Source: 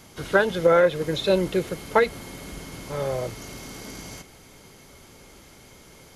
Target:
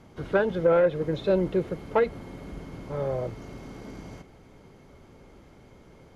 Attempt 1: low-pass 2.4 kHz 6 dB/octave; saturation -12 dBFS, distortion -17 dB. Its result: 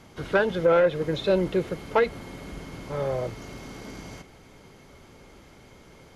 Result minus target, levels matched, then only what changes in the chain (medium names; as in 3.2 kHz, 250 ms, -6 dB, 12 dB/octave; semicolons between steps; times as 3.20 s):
2 kHz band +3.5 dB
change: low-pass 820 Hz 6 dB/octave